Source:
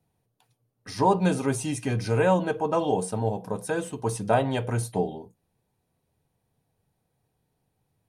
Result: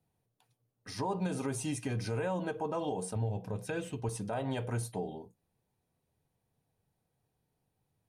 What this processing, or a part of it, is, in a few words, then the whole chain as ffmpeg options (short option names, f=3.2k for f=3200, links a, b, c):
stacked limiters: -filter_complex "[0:a]asettb=1/sr,asplit=3[a][b][c];[a]atrim=end=3.154[d];[b]atrim=start=3.15:end=4.09,asetpts=PTS-STARTPTS,afade=t=in:d=0.004:c=qsin,afade=t=out:st=0.936:d=0.004:c=qsin,equalizer=f=100:t=o:w=0.67:g=11,equalizer=f=1k:t=o:w=0.67:g=-5,equalizer=f=2.5k:t=o:w=0.67:g=7,equalizer=f=10k:t=o:w=0.67:g=-7[e];[c]atrim=start=4.086[f];[d][e]acrossfade=d=0.004:c1=hsin:c2=qsin[g];[g][f]acrossfade=d=0.004:c1=qsin:c2=hsin,alimiter=limit=-14.5dB:level=0:latency=1:release=174,alimiter=limit=-20dB:level=0:latency=1:release=81,volume=-5.5dB"